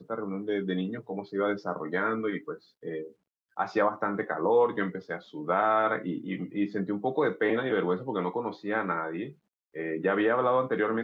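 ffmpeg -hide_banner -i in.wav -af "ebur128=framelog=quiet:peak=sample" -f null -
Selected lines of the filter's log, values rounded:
Integrated loudness:
  I:         -29.3 LUFS
  Threshold: -39.6 LUFS
Loudness range:
  LRA:         4.1 LU
  Threshold: -49.6 LUFS
  LRA low:   -32.2 LUFS
  LRA high:  -28.1 LUFS
Sample peak:
  Peak:      -12.0 dBFS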